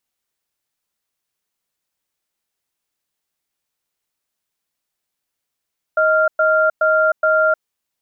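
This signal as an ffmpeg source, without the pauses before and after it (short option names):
-f lavfi -i "aevalsrc='0.188*(sin(2*PI*629*t)+sin(2*PI*1390*t))*clip(min(mod(t,0.42),0.31-mod(t,0.42))/0.005,0,1)':d=1.59:s=44100"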